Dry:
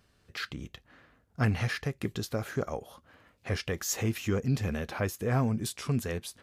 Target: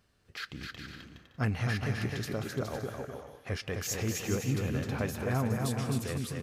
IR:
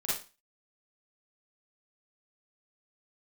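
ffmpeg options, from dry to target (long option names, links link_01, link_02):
-filter_complex "[0:a]aecho=1:1:260|416|509.6|565.8|599.5:0.631|0.398|0.251|0.158|0.1,asplit=2[link_01][link_02];[1:a]atrim=start_sample=2205,asetrate=33075,aresample=44100,adelay=122[link_03];[link_02][link_03]afir=irnorm=-1:irlink=0,volume=-23dB[link_04];[link_01][link_04]amix=inputs=2:normalize=0,volume=-3.5dB"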